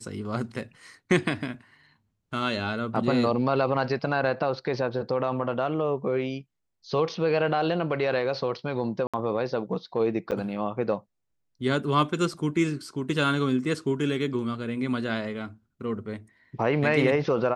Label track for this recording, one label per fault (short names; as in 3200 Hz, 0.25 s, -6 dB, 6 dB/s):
9.070000	9.140000	gap 66 ms
10.310000	10.320000	gap 8 ms